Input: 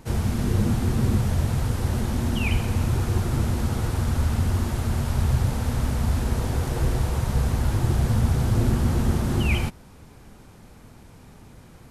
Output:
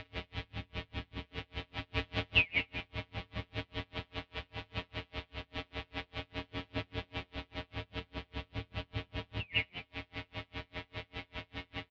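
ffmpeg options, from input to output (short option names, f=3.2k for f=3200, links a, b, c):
-filter_complex "[0:a]highpass=77,acompressor=threshold=-38dB:ratio=4,alimiter=level_in=11dB:limit=-24dB:level=0:latency=1:release=125,volume=-11dB,asettb=1/sr,asplit=3[a][b][c];[a]atrim=end=1.944[d];[b]atrim=start=1.94:end=2.51,asetpts=PTS-STARTPTS,afade=t=in:d=0.004:c=qsin,afade=t=out:st=0.566:d=0.004:c=qsin,acontrast=76[e];[c]atrim=start=2.506[f];[d][e]acrossfade=d=0.004:c1=hsin:c2=qsin[g];[g][f]acrossfade=d=0.004:c1=qsin:c2=hsin,volume=32.5dB,asoftclip=hard,volume=-32.5dB,afftfilt=real='hypot(re,im)*cos(PI*b)':imag='0':win_size=1024:overlap=0.75,highpass=f=220:t=q:w=0.5412,highpass=f=220:t=q:w=1.307,lowpass=f=3.6k:t=q:w=0.5176,lowpass=f=3.6k:t=q:w=0.7071,lowpass=f=3.6k:t=q:w=1.932,afreqshift=-240,asplit=2[h][i];[i]asplit=5[j][k][l][m][n];[j]adelay=100,afreqshift=89,volume=-10dB[o];[k]adelay=200,afreqshift=178,volume=-17.3dB[p];[l]adelay=300,afreqshift=267,volume=-24.7dB[q];[m]adelay=400,afreqshift=356,volume=-32dB[r];[n]adelay=500,afreqshift=445,volume=-39.3dB[s];[o][p][q][r][s]amix=inputs=5:normalize=0[t];[h][t]amix=inputs=2:normalize=0,aexciter=amount=5.5:drive=1:freq=2k,aeval=exprs='val(0)*pow(10,-37*(0.5-0.5*cos(2*PI*5*n/s))/20)':c=same,volume=16.5dB"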